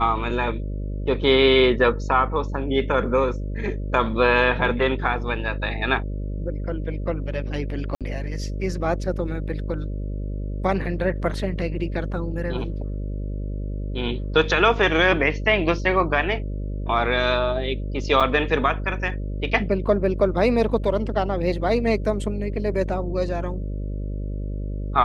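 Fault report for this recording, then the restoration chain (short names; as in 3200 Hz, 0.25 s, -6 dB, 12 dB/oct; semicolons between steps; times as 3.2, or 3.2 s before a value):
buzz 50 Hz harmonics 12 -28 dBFS
7.95–8.01 gap 57 ms
18.2–18.21 gap 5.9 ms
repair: de-hum 50 Hz, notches 12; interpolate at 7.95, 57 ms; interpolate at 18.2, 5.9 ms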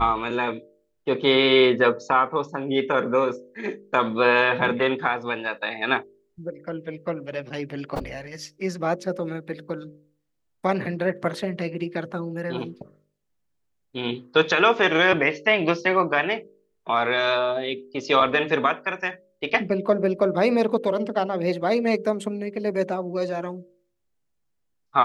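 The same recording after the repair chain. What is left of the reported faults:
none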